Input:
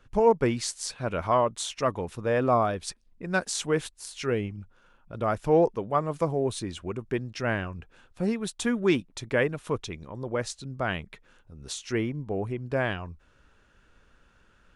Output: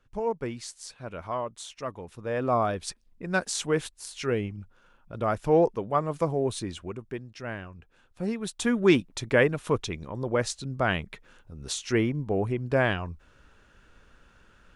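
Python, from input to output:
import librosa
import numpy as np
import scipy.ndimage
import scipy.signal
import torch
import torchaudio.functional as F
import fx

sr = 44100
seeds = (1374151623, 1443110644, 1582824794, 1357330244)

y = fx.gain(x, sr, db=fx.line((2.03, -8.5), (2.7, 0.0), (6.7, 0.0), (7.24, -8.0), (7.79, -8.0), (8.9, 3.5)))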